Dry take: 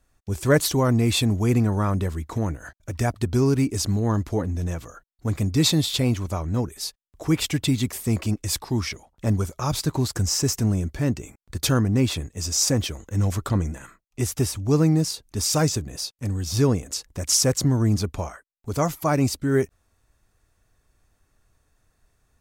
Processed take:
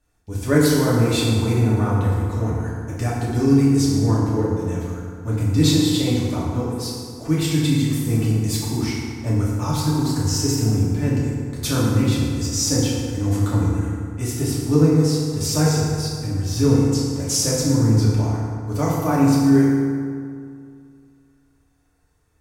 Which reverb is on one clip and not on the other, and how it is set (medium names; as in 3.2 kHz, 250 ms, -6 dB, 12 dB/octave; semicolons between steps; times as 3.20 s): FDN reverb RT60 2.2 s, low-frequency decay 1.1×, high-frequency decay 0.55×, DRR -7 dB; trim -6 dB